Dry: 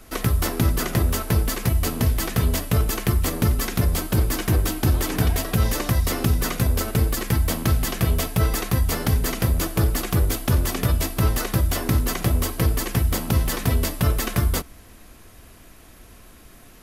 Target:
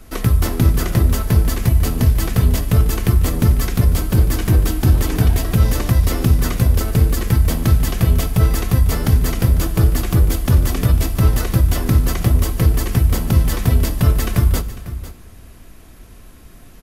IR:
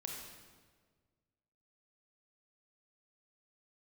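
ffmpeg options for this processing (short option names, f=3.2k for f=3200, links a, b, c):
-filter_complex "[0:a]lowshelf=f=250:g=7.5,aecho=1:1:499:0.178,asplit=2[a][b];[1:a]atrim=start_sample=2205,adelay=25[c];[b][c]afir=irnorm=-1:irlink=0,volume=-12.5dB[d];[a][d]amix=inputs=2:normalize=0"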